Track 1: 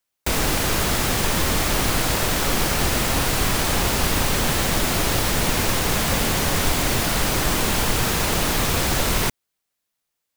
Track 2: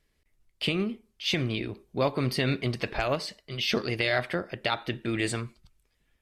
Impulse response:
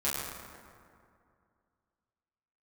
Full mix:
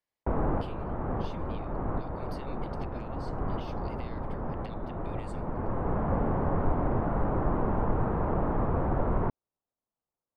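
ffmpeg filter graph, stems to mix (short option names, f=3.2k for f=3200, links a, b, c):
-filter_complex "[0:a]lowpass=f=1.1k:w=0.5412,lowpass=f=1.1k:w=1.3066,volume=-4dB[a];[1:a]highpass=740,acompressor=threshold=-35dB:ratio=6,volume=-16.5dB,asplit=2[b][c];[c]apad=whole_len=456891[d];[a][d]sidechaincompress=threshold=-55dB:ratio=8:attack=8.8:release=1070[e];[e][b]amix=inputs=2:normalize=0"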